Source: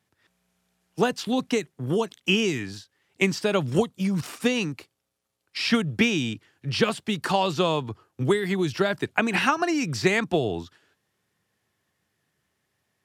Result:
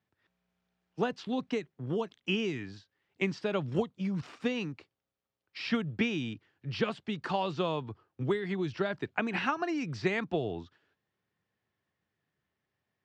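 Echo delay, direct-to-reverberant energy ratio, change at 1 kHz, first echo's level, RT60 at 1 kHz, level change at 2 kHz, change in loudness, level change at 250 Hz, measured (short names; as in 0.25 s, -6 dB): none, none, -8.0 dB, none, none, -9.0 dB, -8.5 dB, -7.5 dB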